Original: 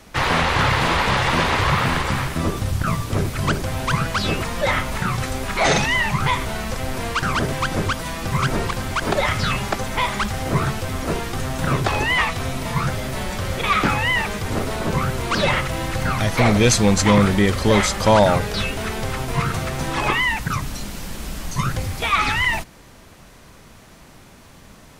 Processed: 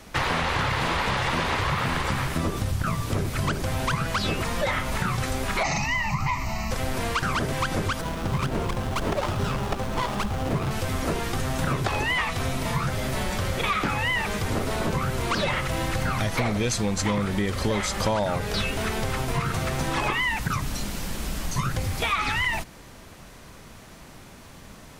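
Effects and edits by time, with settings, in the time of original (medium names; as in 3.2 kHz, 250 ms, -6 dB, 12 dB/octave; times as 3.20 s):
5.63–6.71 s: static phaser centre 2.3 kHz, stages 8
8.01–10.71 s: sliding maximum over 17 samples
whole clip: compression, threshold -22 dBFS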